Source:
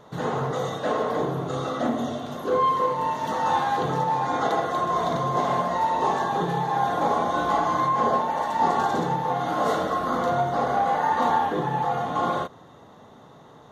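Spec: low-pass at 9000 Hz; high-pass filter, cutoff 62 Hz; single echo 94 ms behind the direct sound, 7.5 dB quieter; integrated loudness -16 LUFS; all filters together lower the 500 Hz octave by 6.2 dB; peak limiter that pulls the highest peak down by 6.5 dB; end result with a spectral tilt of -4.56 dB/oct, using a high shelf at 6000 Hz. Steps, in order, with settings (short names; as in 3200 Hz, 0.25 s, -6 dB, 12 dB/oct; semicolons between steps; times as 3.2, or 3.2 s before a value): HPF 62 Hz; LPF 9000 Hz; bell 500 Hz -8 dB; high shelf 6000 Hz -6.5 dB; limiter -19 dBFS; echo 94 ms -7.5 dB; gain +11.5 dB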